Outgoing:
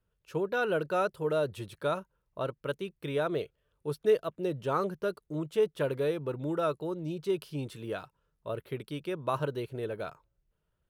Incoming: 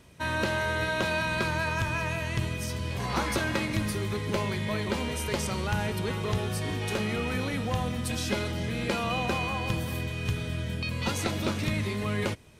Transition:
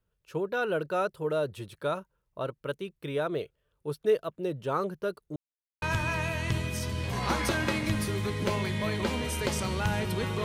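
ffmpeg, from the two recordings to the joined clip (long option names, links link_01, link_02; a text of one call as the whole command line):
ffmpeg -i cue0.wav -i cue1.wav -filter_complex "[0:a]apad=whole_dur=10.44,atrim=end=10.44,asplit=2[link_01][link_02];[link_01]atrim=end=5.36,asetpts=PTS-STARTPTS,afade=type=out:start_time=5.356:duration=0.004:curve=hsin[link_03];[link_02]atrim=start=5.36:end=5.82,asetpts=PTS-STARTPTS,volume=0[link_04];[1:a]atrim=start=1.69:end=6.31,asetpts=PTS-STARTPTS,afade=type=in:duration=0.004:curve=hsin[link_05];[link_03][link_04][link_05]concat=n=3:v=0:a=1" out.wav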